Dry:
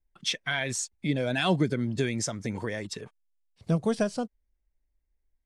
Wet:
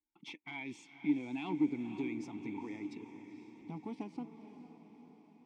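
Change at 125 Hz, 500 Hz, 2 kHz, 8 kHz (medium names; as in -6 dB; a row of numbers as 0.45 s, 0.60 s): -19.5 dB, -17.0 dB, -15.0 dB, under -25 dB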